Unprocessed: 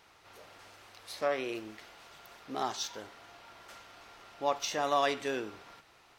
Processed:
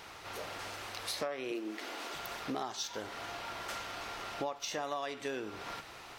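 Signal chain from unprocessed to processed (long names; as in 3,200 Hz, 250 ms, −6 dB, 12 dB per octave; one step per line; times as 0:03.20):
0:01.51–0:02.15: low shelf with overshoot 190 Hz −12.5 dB, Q 3
downward compressor 10 to 1, threshold −46 dBFS, peak gain reduction 22.5 dB
level +11.5 dB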